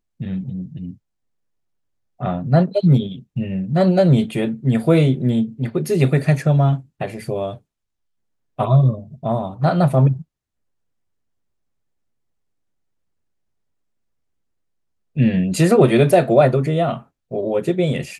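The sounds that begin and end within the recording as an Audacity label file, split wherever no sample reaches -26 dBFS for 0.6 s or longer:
2.210000	7.540000	sound
8.590000	10.210000	sound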